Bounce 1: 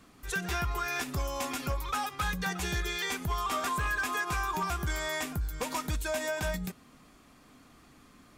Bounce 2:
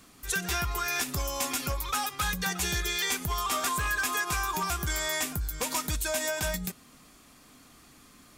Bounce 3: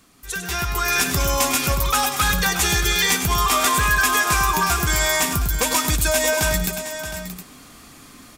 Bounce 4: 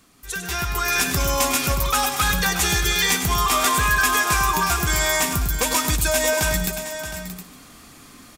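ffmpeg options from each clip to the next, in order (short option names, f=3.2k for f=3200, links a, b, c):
-af "highshelf=f=3.6k:g=10.5"
-af "aecho=1:1:101|627|715:0.335|0.251|0.224,dynaudnorm=f=120:g=11:m=10dB"
-af "aecho=1:1:148:0.158,volume=-1dB"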